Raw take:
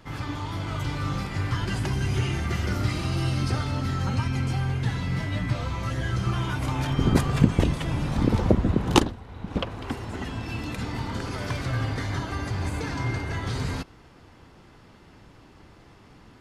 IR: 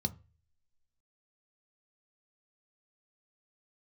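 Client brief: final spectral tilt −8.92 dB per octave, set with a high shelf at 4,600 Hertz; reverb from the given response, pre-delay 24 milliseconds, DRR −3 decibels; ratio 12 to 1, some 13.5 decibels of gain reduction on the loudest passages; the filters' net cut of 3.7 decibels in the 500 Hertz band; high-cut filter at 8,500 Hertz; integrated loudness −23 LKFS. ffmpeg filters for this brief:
-filter_complex "[0:a]lowpass=8500,equalizer=frequency=500:width_type=o:gain=-5,highshelf=frequency=4600:gain=-5.5,acompressor=threshold=-26dB:ratio=12,asplit=2[link_01][link_02];[1:a]atrim=start_sample=2205,adelay=24[link_03];[link_02][link_03]afir=irnorm=-1:irlink=0,volume=1.5dB[link_04];[link_01][link_04]amix=inputs=2:normalize=0,volume=-4.5dB"

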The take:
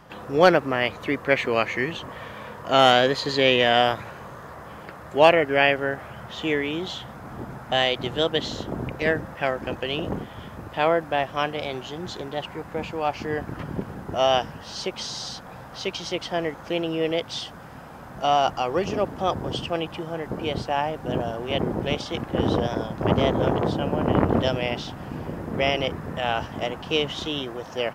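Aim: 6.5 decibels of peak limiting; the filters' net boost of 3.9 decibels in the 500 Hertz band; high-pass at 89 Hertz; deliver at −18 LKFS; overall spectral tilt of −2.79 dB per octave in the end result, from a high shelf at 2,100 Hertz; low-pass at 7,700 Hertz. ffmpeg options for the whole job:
ffmpeg -i in.wav -af "highpass=89,lowpass=7700,equalizer=frequency=500:width_type=o:gain=4.5,highshelf=frequency=2100:gain=3.5,volume=5dB,alimiter=limit=-1dB:level=0:latency=1" out.wav

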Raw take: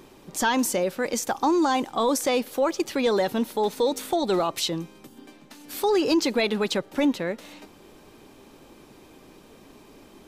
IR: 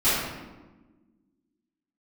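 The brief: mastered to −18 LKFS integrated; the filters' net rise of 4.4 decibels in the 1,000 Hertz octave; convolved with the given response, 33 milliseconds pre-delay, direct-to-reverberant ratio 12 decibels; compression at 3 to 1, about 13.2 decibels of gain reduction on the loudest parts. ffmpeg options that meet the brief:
-filter_complex "[0:a]equalizer=frequency=1000:width_type=o:gain=5.5,acompressor=threshold=-35dB:ratio=3,asplit=2[link_01][link_02];[1:a]atrim=start_sample=2205,adelay=33[link_03];[link_02][link_03]afir=irnorm=-1:irlink=0,volume=-28.5dB[link_04];[link_01][link_04]amix=inputs=2:normalize=0,volume=17dB"

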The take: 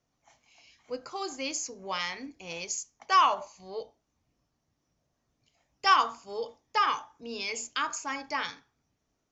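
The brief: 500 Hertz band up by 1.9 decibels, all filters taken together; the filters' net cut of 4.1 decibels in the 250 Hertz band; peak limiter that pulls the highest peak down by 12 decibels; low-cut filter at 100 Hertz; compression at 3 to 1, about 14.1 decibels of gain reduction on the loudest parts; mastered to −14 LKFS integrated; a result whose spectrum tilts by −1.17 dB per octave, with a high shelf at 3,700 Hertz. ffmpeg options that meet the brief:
ffmpeg -i in.wav -af "highpass=100,equalizer=frequency=250:width_type=o:gain=-6.5,equalizer=frequency=500:width_type=o:gain=4,highshelf=frequency=3700:gain=-4.5,acompressor=threshold=-37dB:ratio=3,volume=28dB,alimiter=limit=-3dB:level=0:latency=1" out.wav

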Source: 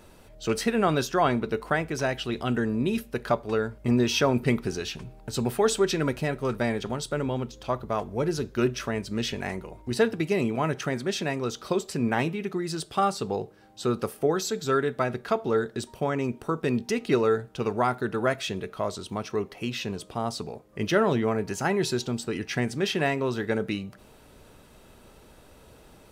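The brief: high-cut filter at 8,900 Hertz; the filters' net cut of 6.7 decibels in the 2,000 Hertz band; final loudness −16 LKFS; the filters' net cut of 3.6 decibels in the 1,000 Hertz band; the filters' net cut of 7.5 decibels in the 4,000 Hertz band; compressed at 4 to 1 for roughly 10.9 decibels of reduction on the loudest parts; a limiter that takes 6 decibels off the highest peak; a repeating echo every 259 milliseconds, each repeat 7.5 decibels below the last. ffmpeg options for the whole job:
ffmpeg -i in.wav -af "lowpass=8900,equalizer=frequency=1000:width_type=o:gain=-3,equalizer=frequency=2000:width_type=o:gain=-6,equalizer=frequency=4000:width_type=o:gain=-7.5,acompressor=threshold=-32dB:ratio=4,alimiter=level_in=3dB:limit=-24dB:level=0:latency=1,volume=-3dB,aecho=1:1:259|518|777|1036|1295:0.422|0.177|0.0744|0.0312|0.0131,volume=21dB" out.wav

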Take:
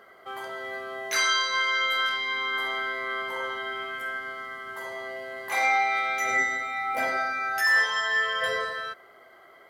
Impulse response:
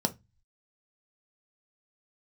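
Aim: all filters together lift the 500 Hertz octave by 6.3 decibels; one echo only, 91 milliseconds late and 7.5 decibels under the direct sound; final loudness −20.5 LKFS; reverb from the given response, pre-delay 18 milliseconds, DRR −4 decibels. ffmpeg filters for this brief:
-filter_complex "[0:a]equalizer=frequency=500:width_type=o:gain=8,aecho=1:1:91:0.422,asplit=2[link_01][link_02];[1:a]atrim=start_sample=2205,adelay=18[link_03];[link_02][link_03]afir=irnorm=-1:irlink=0,volume=-3dB[link_04];[link_01][link_04]amix=inputs=2:normalize=0,volume=-1.5dB"

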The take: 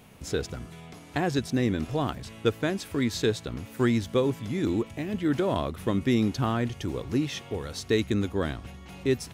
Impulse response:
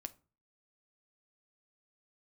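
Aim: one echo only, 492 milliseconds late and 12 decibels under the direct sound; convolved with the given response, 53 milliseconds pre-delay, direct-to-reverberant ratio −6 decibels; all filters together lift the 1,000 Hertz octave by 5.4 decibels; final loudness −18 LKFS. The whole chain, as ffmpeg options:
-filter_complex "[0:a]equalizer=frequency=1000:width_type=o:gain=7,aecho=1:1:492:0.251,asplit=2[link_01][link_02];[1:a]atrim=start_sample=2205,adelay=53[link_03];[link_02][link_03]afir=irnorm=-1:irlink=0,volume=10dB[link_04];[link_01][link_04]amix=inputs=2:normalize=0,volume=2dB"

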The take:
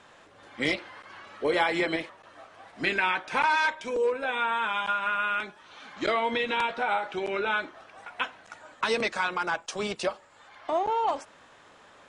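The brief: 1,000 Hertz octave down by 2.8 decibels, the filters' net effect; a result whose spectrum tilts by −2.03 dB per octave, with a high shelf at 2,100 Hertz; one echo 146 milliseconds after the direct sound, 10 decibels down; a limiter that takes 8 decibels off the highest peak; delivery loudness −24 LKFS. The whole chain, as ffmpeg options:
ffmpeg -i in.wav -af "equalizer=frequency=1000:width_type=o:gain=-5.5,highshelf=frequency=2100:gain=8,alimiter=limit=-17dB:level=0:latency=1,aecho=1:1:146:0.316,volume=4dB" out.wav

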